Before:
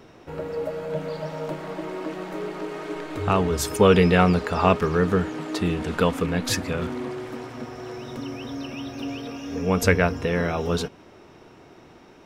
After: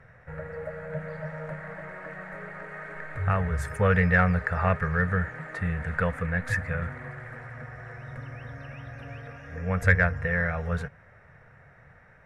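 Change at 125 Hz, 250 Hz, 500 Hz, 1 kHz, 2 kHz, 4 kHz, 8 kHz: -1.0, -8.0, -9.5, -6.0, +2.5, -18.5, -17.0 dB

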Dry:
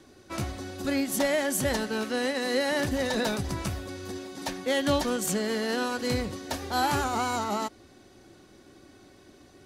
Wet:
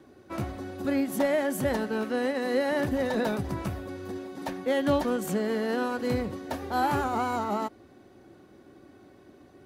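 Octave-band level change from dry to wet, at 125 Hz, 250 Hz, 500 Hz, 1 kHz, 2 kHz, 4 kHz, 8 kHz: -0.5, +1.0, +1.0, 0.0, -2.5, -8.5, -10.0 dB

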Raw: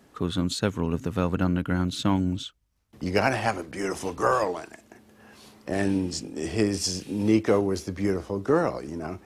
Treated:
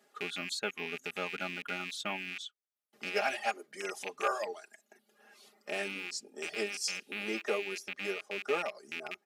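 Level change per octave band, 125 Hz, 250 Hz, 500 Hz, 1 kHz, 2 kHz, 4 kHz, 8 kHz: under -25 dB, -20.5 dB, -10.5 dB, -8.5 dB, -2.0 dB, -4.0 dB, -6.5 dB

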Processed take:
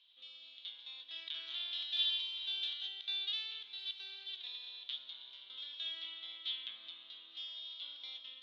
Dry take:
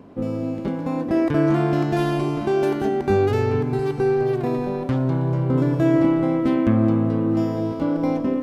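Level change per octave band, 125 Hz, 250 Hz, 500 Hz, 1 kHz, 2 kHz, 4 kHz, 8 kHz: under -40 dB, under -40 dB, under -40 dB, -37.5 dB, -16.5 dB, +8.0 dB, n/a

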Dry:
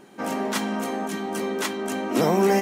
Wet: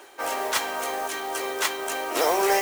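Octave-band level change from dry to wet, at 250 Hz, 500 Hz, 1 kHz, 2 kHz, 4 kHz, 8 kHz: -12.0, -2.5, +2.0, +3.5, +4.0, +4.5 dB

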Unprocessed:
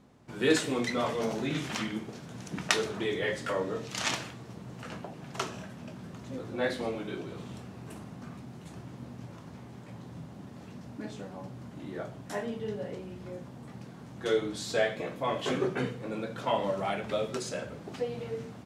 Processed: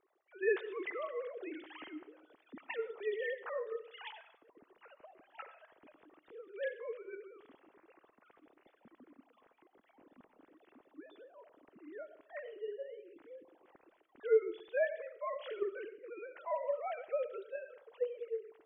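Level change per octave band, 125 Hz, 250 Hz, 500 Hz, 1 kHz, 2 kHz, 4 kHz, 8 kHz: under -40 dB, -17.5 dB, -4.5 dB, -10.5 dB, -9.0 dB, -20.0 dB, under -40 dB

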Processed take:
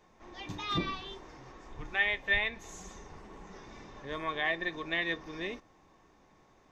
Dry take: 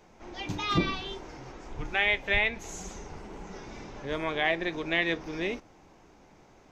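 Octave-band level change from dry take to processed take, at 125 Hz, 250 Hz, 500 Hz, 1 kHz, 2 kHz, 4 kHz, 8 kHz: -7.0, -7.0, -7.0, -4.5, -3.0, -4.0, -7.0 dB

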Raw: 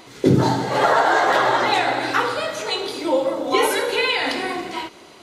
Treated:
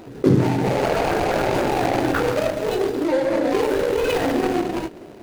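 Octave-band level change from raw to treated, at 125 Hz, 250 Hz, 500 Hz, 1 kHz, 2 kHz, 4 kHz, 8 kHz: +2.0, +3.0, +1.5, -5.0, -6.5, -8.5, -4.0 dB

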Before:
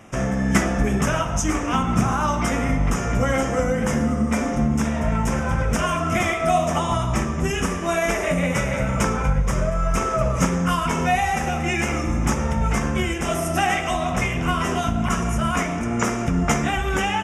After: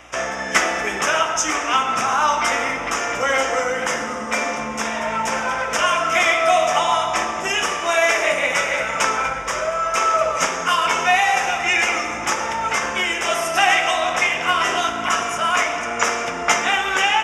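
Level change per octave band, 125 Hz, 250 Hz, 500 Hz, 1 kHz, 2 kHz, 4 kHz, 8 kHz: -19.0, -11.0, +2.0, +5.5, +8.0, +9.0, +5.0 dB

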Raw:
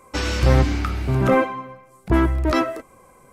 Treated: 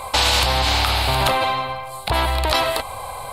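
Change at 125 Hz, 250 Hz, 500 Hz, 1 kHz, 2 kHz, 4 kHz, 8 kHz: -4.0, -11.0, -1.5, +6.5, +5.5, +15.0, +11.5 dB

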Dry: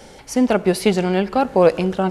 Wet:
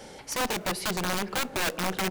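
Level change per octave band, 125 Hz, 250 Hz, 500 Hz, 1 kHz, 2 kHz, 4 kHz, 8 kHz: -12.5, -16.0, -17.0, -9.0, -1.5, 0.0, +1.0 dB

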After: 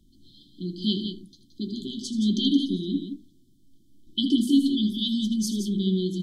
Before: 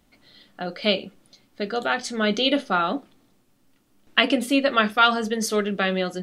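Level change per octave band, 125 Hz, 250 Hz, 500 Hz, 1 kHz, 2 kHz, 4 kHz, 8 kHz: +3.5 dB, +3.5 dB, -12.5 dB, under -40 dB, under -40 dB, -4.0 dB, -3.5 dB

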